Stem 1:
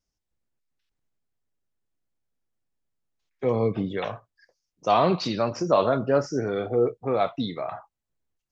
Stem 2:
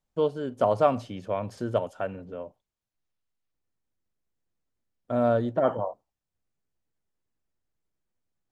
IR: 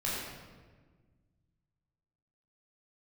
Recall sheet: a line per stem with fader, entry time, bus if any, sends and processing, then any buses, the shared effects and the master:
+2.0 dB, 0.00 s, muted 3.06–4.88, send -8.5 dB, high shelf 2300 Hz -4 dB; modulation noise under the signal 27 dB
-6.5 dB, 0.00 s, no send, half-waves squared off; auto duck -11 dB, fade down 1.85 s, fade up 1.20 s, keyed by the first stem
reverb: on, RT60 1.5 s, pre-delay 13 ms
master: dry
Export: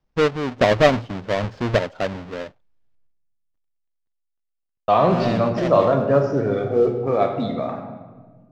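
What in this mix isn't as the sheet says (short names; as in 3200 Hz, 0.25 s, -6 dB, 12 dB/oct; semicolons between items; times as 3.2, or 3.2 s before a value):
stem 2 -6.5 dB -> +4.0 dB; master: extra air absorption 180 m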